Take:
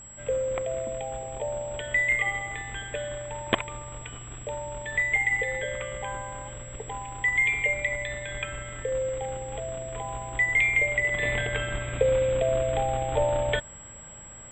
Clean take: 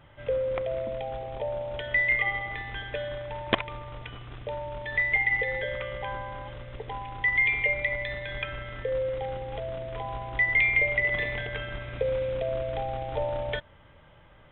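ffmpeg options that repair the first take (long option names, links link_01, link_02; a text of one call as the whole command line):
ffmpeg -i in.wav -af "bandreject=frequency=54.6:width_type=h:width=4,bandreject=frequency=109.2:width_type=h:width=4,bandreject=frequency=163.8:width_type=h:width=4,bandreject=frequency=218.4:width_type=h:width=4,bandreject=frequency=7700:width=30,asetnsamples=nb_out_samples=441:pad=0,asendcmd='11.23 volume volume -5dB',volume=0dB" out.wav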